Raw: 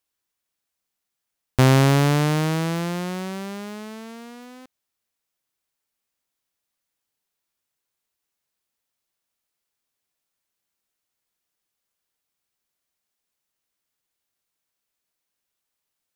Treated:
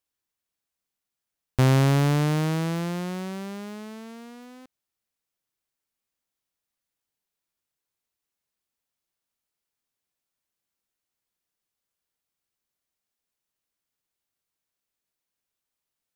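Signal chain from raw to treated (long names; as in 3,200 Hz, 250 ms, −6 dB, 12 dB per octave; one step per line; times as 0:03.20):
low-shelf EQ 370 Hz +3.5 dB
in parallel at −5.5 dB: hard clipping −14.5 dBFS, distortion −11 dB
on the sum: level −8.5 dB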